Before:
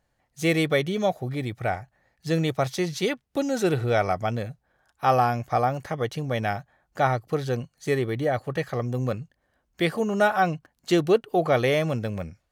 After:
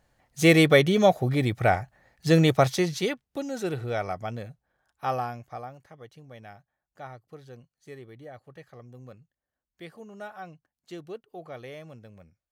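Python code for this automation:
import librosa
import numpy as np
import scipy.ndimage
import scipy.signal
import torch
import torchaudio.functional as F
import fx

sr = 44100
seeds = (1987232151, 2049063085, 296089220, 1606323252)

y = fx.gain(x, sr, db=fx.line((2.58, 5.0), (3.4, -7.0), (5.06, -7.0), (5.84, -19.5)))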